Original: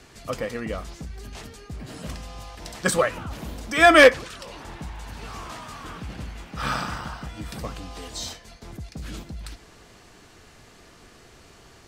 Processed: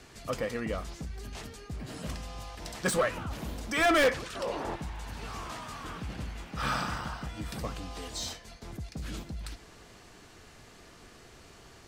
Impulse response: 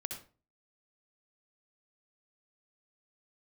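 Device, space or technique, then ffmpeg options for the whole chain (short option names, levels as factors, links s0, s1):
saturation between pre-emphasis and de-emphasis: -filter_complex "[0:a]highshelf=f=2300:g=8.5,asoftclip=type=tanh:threshold=0.15,highshelf=f=2300:g=-8.5,asettb=1/sr,asplit=3[s0][s1][s2];[s0]atrim=end=4.354[s3];[s1]atrim=start=4.35:end=4.76,asetpts=PTS-STARTPTS,afade=t=in:d=0.004:c=qsin,afade=t=out:st=0.406:d=0.004:c=qsin,equalizer=f=520:t=o:w=2.5:g=12.5[s4];[s2]atrim=start=4.756[s5];[s3][s4]acrossfade=d=0.004:c1=hsin:c2=qsin[s6];[s6][s5]acrossfade=d=0.004:c1=qsin:c2=hsin,volume=0.75"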